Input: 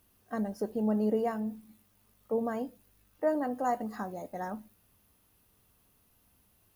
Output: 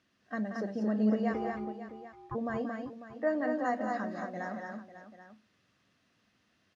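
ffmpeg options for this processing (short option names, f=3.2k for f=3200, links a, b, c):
-filter_complex "[0:a]highpass=170,equalizer=f=430:t=q:w=4:g=-7,equalizer=f=870:t=q:w=4:g=-9,equalizer=f=1.8k:t=q:w=4:g=7,lowpass=f=5.8k:w=0.5412,lowpass=f=5.8k:w=1.3066,asplit=3[a][b][c];[a]afade=t=out:st=1.33:d=0.02[d];[b]aeval=exprs='val(0)*sin(2*PI*580*n/s)':c=same,afade=t=in:st=1.33:d=0.02,afade=t=out:st=2.34:d=0.02[e];[c]afade=t=in:st=2.34:d=0.02[f];[d][e][f]amix=inputs=3:normalize=0,aecho=1:1:180|226|547|787:0.335|0.668|0.224|0.178"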